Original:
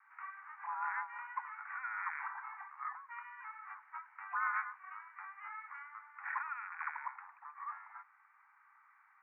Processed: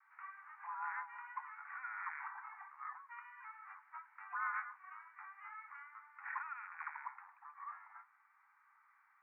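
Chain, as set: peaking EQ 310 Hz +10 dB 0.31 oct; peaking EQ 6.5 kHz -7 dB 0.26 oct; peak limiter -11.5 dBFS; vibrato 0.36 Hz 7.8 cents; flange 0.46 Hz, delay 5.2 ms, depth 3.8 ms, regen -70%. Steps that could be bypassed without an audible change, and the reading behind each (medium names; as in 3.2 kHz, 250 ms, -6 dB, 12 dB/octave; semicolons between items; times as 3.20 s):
peaking EQ 310 Hz: input has nothing below 720 Hz; peaking EQ 6.5 kHz: input has nothing above 2.6 kHz; peak limiter -11.5 dBFS: peak at its input -23.0 dBFS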